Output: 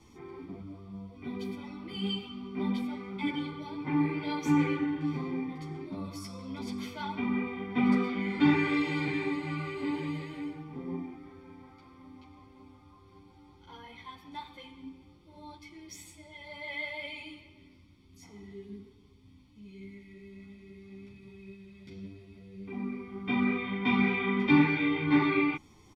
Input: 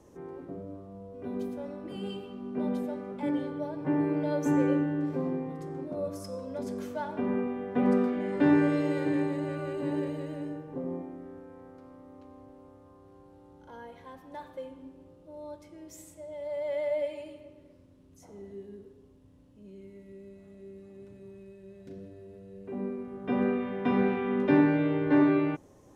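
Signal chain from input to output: band shelf 3200 Hz +11.5 dB; comb 0.9 ms, depth 80%; ensemble effect

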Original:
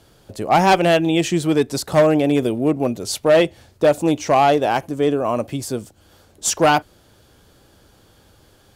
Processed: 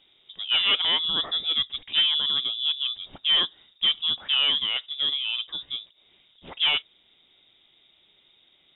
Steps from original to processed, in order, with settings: inverted band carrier 3700 Hz; gain -8.5 dB

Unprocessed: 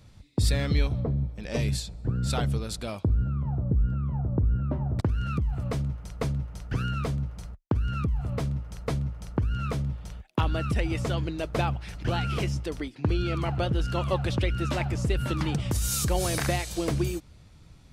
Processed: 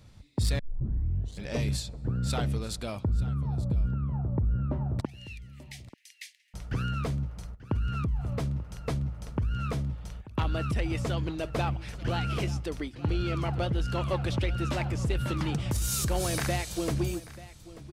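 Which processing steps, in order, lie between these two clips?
5.05–6.54 steep high-pass 1800 Hz 96 dB/oct; soft clip -18.5 dBFS, distortion -19 dB; echo 0.887 s -17.5 dB; 0.59 tape start 0.86 s; gain -1 dB

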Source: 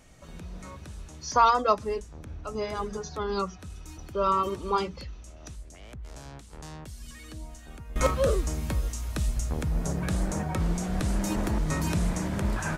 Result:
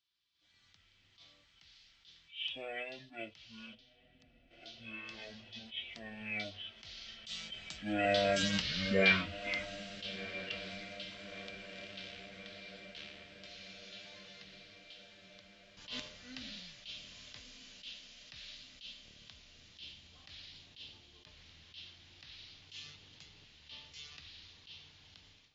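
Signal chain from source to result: Doppler pass-by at 4.35, 20 m/s, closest 4.9 m; diffused feedback echo 0.671 s, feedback 61%, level -14 dB; speed mistake 15 ips tape played at 7.5 ips; weighting filter D; spectral gain 3.75–4.51, 310–11000 Hz -12 dB; passive tone stack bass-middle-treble 5-5-5; AGC gain up to 16 dB; attack slew limiter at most 190 dB/s

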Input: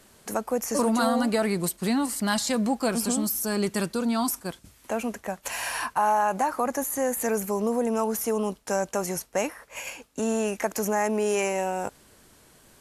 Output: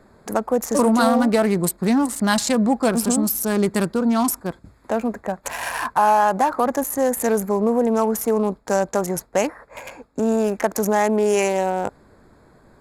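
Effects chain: Wiener smoothing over 15 samples; gain +7 dB

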